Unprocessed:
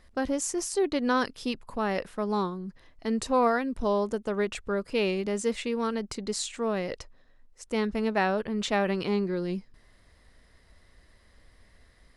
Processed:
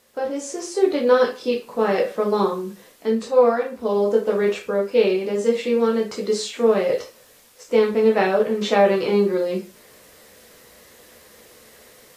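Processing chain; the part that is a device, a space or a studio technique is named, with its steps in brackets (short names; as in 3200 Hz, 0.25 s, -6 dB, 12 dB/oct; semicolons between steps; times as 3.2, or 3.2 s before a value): filmed off a television (BPF 190–6200 Hz; bell 490 Hz +9 dB 0.58 oct; reverb RT60 0.30 s, pre-delay 10 ms, DRR -1 dB; white noise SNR 35 dB; AGC gain up to 9.5 dB; gain -4 dB; AAC 48 kbps 32000 Hz)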